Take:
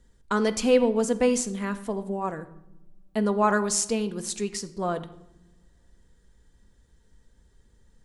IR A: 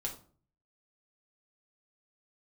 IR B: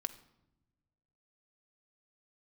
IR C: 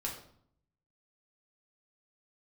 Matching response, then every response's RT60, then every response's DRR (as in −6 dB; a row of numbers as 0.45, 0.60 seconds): B; 0.45 s, non-exponential decay, 0.60 s; −1.0, 8.5, −2.5 decibels